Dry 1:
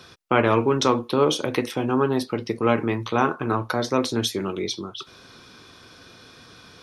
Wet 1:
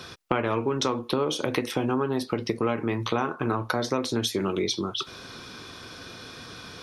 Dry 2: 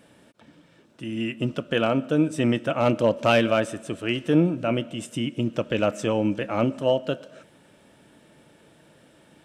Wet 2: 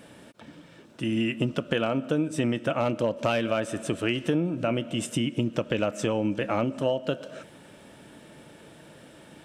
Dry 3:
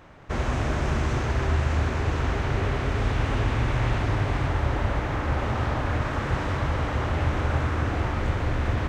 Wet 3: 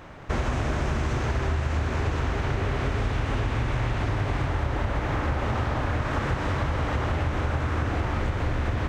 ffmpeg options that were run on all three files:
ffmpeg -i in.wav -af "acompressor=threshold=-28dB:ratio=6,volume=5.5dB" out.wav

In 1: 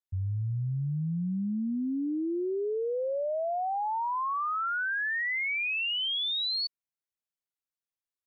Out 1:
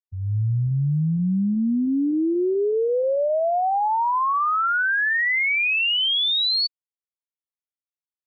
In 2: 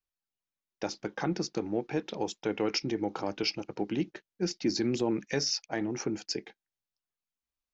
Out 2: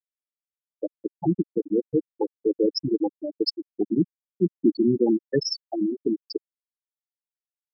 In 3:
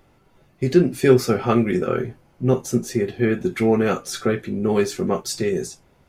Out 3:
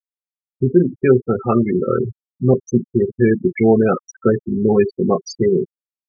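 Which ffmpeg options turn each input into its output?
ffmpeg -i in.wav -af "afftfilt=real='re*gte(hypot(re,im),0.158)':imag='im*gte(hypot(re,im),0.158)':win_size=1024:overlap=0.75,dynaudnorm=framelen=190:gausssize=3:maxgain=10.5dB,volume=-1dB" out.wav

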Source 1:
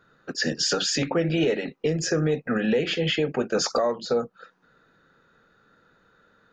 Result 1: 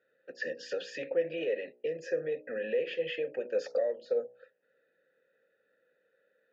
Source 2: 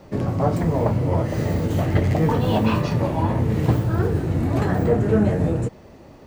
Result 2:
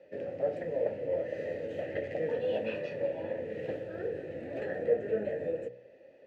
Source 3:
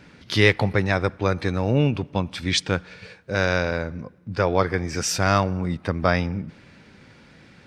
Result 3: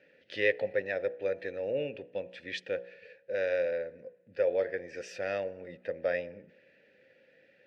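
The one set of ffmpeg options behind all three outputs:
ffmpeg -i in.wav -filter_complex "[0:a]asplit=3[link_01][link_02][link_03];[link_01]bandpass=frequency=530:width_type=q:width=8,volume=0dB[link_04];[link_02]bandpass=frequency=1840:width_type=q:width=8,volume=-6dB[link_05];[link_03]bandpass=frequency=2480:width_type=q:width=8,volume=-9dB[link_06];[link_04][link_05][link_06]amix=inputs=3:normalize=0,bandreject=frequency=60.98:width_type=h:width=4,bandreject=frequency=121.96:width_type=h:width=4,bandreject=frequency=182.94:width_type=h:width=4,bandreject=frequency=243.92:width_type=h:width=4,bandreject=frequency=304.9:width_type=h:width=4,bandreject=frequency=365.88:width_type=h:width=4,bandreject=frequency=426.86:width_type=h:width=4,bandreject=frequency=487.84:width_type=h:width=4,bandreject=frequency=548.82:width_type=h:width=4,bandreject=frequency=609.8:width_type=h:width=4,bandreject=frequency=670.78:width_type=h:width=4,bandreject=frequency=731.76:width_type=h:width=4,bandreject=frequency=792.74:width_type=h:width=4,bandreject=frequency=853.72:width_type=h:width=4,bandreject=frequency=914.7:width_type=h:width=4,bandreject=frequency=975.68:width_type=h:width=4,bandreject=frequency=1036.66:width_type=h:width=4,bandreject=frequency=1097.64:width_type=h:width=4" out.wav

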